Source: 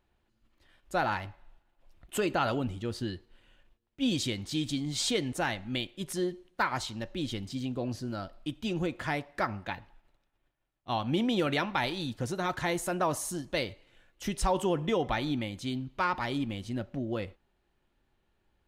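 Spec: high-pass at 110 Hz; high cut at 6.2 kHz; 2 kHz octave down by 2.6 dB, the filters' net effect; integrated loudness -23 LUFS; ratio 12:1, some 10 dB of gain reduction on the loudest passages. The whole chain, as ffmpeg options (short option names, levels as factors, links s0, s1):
-af "highpass=110,lowpass=6200,equalizer=f=2000:t=o:g=-3.5,acompressor=threshold=0.02:ratio=12,volume=6.68"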